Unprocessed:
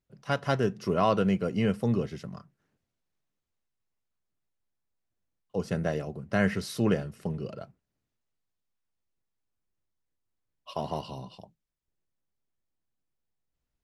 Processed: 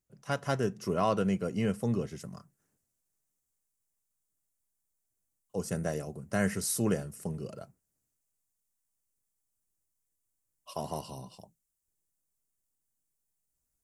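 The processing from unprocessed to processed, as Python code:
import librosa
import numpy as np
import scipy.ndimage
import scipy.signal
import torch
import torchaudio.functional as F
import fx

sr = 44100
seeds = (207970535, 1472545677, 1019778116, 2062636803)

y = fx.high_shelf_res(x, sr, hz=5500.0, db=fx.steps((0.0, 8.0), (2.19, 14.0)), q=1.5)
y = y * librosa.db_to_amplitude(-3.5)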